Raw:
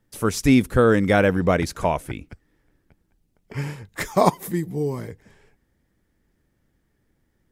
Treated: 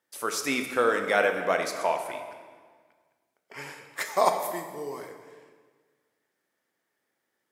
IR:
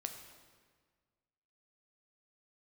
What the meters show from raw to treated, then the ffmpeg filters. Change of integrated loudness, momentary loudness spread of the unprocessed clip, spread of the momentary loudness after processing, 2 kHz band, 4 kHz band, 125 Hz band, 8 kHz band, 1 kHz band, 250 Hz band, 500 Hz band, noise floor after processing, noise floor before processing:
−6.0 dB, 16 LU, 18 LU, −2.0 dB, −2.0 dB, −24.5 dB, −2.0 dB, −2.5 dB, −15.5 dB, −5.5 dB, −80 dBFS, −70 dBFS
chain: -filter_complex "[0:a]highpass=580[link_01];[1:a]atrim=start_sample=2205[link_02];[link_01][link_02]afir=irnorm=-1:irlink=0"

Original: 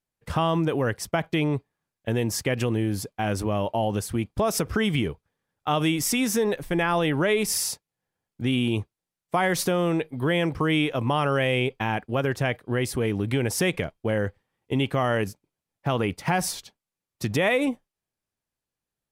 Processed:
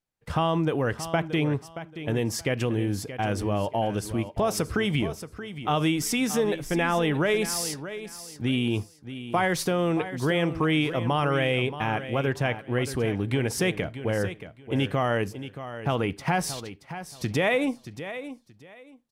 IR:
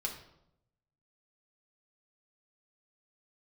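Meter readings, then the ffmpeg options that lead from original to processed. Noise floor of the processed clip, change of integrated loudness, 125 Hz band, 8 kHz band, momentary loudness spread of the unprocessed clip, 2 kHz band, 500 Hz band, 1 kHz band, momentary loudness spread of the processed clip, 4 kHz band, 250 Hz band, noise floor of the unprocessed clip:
−55 dBFS, −1.5 dB, −0.5 dB, −3.0 dB, 7 LU, −1.0 dB, −1.0 dB, −0.5 dB, 12 LU, −1.5 dB, −1.0 dB, below −85 dBFS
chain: -filter_complex "[0:a]highshelf=frequency=10000:gain=-6.5,aecho=1:1:627|1254|1881:0.251|0.0553|0.0122,asplit=2[link_01][link_02];[1:a]atrim=start_sample=2205,atrim=end_sample=4410[link_03];[link_02][link_03]afir=irnorm=-1:irlink=0,volume=-16dB[link_04];[link_01][link_04]amix=inputs=2:normalize=0,volume=-2dB"

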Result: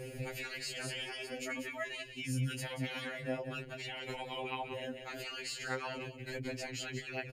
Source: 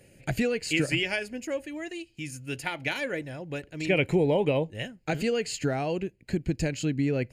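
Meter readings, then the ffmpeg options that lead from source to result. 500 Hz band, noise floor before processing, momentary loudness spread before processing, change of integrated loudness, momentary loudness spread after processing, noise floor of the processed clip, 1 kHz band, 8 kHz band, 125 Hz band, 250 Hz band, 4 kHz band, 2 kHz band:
−14.0 dB, −61 dBFS, 13 LU, −10.5 dB, 4 LU, −49 dBFS, −6.5 dB, −6.5 dB, −10.0 dB, −14.5 dB, −6.0 dB, −8.5 dB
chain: -filter_complex "[0:a]equalizer=frequency=7600:width=1.5:gain=-5.5,afftfilt=real='re*lt(hypot(re,im),0.1)':imag='im*lt(hypot(re,im),0.1)':win_size=1024:overlap=0.75,equalizer=frequency=450:width=1.3:gain=5,aeval=exprs='val(0)+0.000251*(sin(2*PI*60*n/s)+sin(2*PI*2*60*n/s)/2+sin(2*PI*3*60*n/s)/3+sin(2*PI*4*60*n/s)/4+sin(2*PI*5*60*n/s)/5)':channel_layout=same,acompressor=threshold=-46dB:ratio=3,asplit=2[link_01][link_02];[link_02]aecho=0:1:185:0.251[link_03];[link_01][link_03]amix=inputs=2:normalize=0,alimiter=level_in=17dB:limit=-24dB:level=0:latency=1:release=72,volume=-17dB,afftfilt=real='re*2.45*eq(mod(b,6),0)':imag='im*2.45*eq(mod(b,6),0)':win_size=2048:overlap=0.75,volume=12.5dB"

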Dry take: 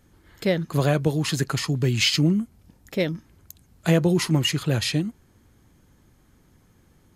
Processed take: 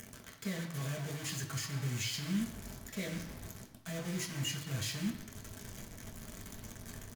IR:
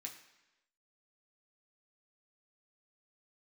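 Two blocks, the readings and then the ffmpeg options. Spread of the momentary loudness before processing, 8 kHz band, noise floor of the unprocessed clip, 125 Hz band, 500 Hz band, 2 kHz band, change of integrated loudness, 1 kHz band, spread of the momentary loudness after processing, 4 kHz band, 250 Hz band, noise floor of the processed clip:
10 LU, −8.0 dB, −59 dBFS, −15.0 dB, −20.5 dB, −13.0 dB, −16.5 dB, −15.0 dB, 12 LU, −14.5 dB, −15.0 dB, −54 dBFS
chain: -filter_complex "[0:a]bass=frequency=250:gain=7,treble=frequency=4000:gain=4,aecho=1:1:6.2:0.41,asubboost=boost=7:cutoff=71,areverse,acompressor=threshold=-29dB:ratio=10,areverse,alimiter=level_in=2.5dB:limit=-24dB:level=0:latency=1:release=97,volume=-2.5dB,acompressor=mode=upward:threshold=-42dB:ratio=2.5,acrusher=bits=6:mix=0:aa=0.000001[link_01];[1:a]atrim=start_sample=2205,asetrate=38367,aresample=44100[link_02];[link_01][link_02]afir=irnorm=-1:irlink=0,volume=2dB"

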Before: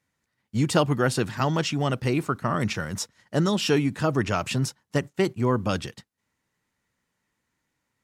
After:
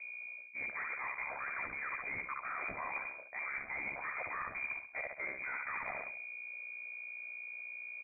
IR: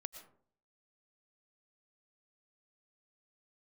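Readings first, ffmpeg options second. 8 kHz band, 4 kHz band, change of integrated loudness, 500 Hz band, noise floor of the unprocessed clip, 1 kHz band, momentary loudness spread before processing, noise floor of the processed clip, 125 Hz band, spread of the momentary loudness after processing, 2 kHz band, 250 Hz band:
below −40 dB, below −40 dB, −14.5 dB, −24.5 dB, −79 dBFS, −12.0 dB, 7 LU, −50 dBFS, −37.0 dB, 5 LU, −3.0 dB, −33.5 dB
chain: -af "tiltshelf=frequency=1100:gain=-6.5,aecho=1:1:68|136|204|272|340:0.316|0.155|0.0759|0.0372|0.0182,aeval=exprs='val(0)*sin(2*PI*34*n/s)':channel_layout=same,equalizer=frequency=210:width_type=o:width=0.76:gain=-7.5,deesser=0.85,bandreject=frequency=610:width=14,aeval=exprs='val(0)+0.00178*(sin(2*PI*60*n/s)+sin(2*PI*2*60*n/s)/2+sin(2*PI*3*60*n/s)/3+sin(2*PI*4*60*n/s)/4+sin(2*PI*5*60*n/s)/5)':channel_layout=same,asoftclip=type=hard:threshold=-32.5dB,lowpass=frequency=2100:width_type=q:width=0.5098,lowpass=frequency=2100:width_type=q:width=0.6013,lowpass=frequency=2100:width_type=q:width=0.9,lowpass=frequency=2100:width_type=q:width=2.563,afreqshift=-2500,areverse,acompressor=threshold=-48dB:ratio=10,areverse,volume=10.5dB"

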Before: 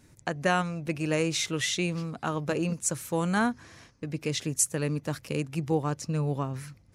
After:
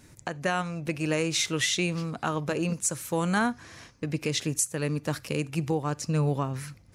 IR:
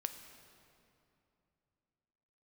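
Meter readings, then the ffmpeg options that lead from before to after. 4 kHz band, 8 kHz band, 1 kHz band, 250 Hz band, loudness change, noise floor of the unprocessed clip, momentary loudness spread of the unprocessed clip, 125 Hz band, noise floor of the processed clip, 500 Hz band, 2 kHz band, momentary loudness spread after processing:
+2.5 dB, +0.5 dB, 0.0 dB, +0.5 dB, +0.5 dB, −59 dBFS, 8 LU, +1.0 dB, −56 dBFS, 0.0 dB, +1.0 dB, 8 LU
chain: -filter_complex "[0:a]alimiter=limit=-20.5dB:level=0:latency=1:release=475,asplit=2[link_01][link_02];[1:a]atrim=start_sample=2205,atrim=end_sample=3969,lowshelf=frequency=450:gain=-10.5[link_03];[link_02][link_03]afir=irnorm=-1:irlink=0,volume=-3.5dB[link_04];[link_01][link_04]amix=inputs=2:normalize=0,volume=2dB"

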